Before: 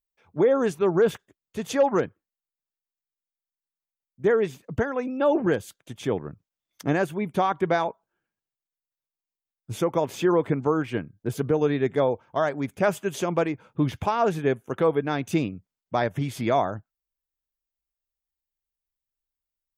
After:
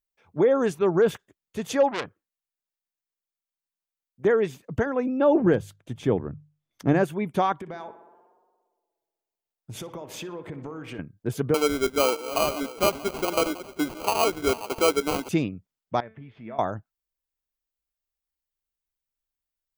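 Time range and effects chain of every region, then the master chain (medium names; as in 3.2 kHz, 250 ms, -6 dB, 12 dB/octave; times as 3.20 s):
1.91–4.25 s: bass shelf 230 Hz -4.5 dB + transformer saturation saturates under 2.9 kHz
4.86–7.04 s: tilt EQ -2 dB/octave + hum notches 50/100/150 Hz
7.58–10.99 s: compression 12:1, threshold -33 dBFS + tape echo 60 ms, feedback 85%, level -11 dB, low-pass 2.2 kHz
11.54–15.29 s: backward echo that repeats 314 ms, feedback 51%, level -12.5 dB + high-pass 270 Hz 24 dB/octave + sample-rate reducer 1.8 kHz
16.00–16.59 s: low-pass 2.7 kHz 24 dB/octave + compression 1.5:1, threshold -41 dBFS + feedback comb 220 Hz, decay 0.4 s, mix 70%
whole clip: none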